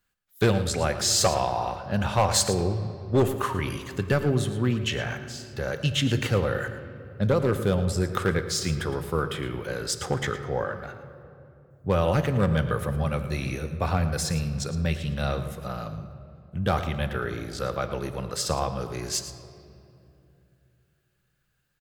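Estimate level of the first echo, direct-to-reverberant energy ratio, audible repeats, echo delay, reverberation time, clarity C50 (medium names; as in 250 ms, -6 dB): -13.0 dB, 8.0 dB, 1, 112 ms, 2.7 s, 9.5 dB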